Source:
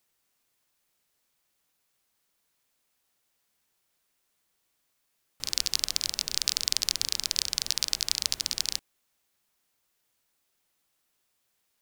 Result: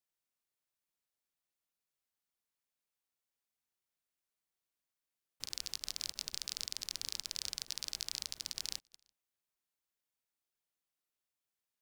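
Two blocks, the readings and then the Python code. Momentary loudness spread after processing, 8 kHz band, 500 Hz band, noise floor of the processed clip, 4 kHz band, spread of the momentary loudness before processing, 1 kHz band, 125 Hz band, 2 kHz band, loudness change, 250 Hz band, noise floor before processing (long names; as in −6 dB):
3 LU, −12.5 dB, −11.5 dB, below −85 dBFS, −12.5 dB, 4 LU, −12.0 dB, −11.0 dB, −12.5 dB, −12.5 dB, −11.5 dB, −76 dBFS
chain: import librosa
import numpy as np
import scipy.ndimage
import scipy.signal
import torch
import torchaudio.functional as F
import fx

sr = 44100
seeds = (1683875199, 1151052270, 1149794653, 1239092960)

p1 = x + fx.echo_single(x, sr, ms=338, db=-23.0, dry=0)
p2 = fx.level_steps(p1, sr, step_db=17)
y = F.gain(torch.from_numpy(p2), -7.0).numpy()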